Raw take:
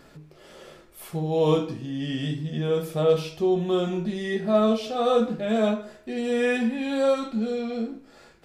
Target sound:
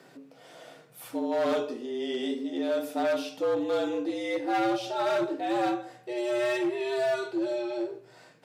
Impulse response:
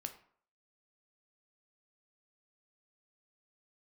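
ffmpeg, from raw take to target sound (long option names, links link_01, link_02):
-af "asoftclip=type=hard:threshold=-21dB,afreqshift=120,bandreject=frequency=62.49:width_type=h:width=4,bandreject=frequency=124.98:width_type=h:width=4,bandreject=frequency=187.47:width_type=h:width=4,volume=-2.5dB"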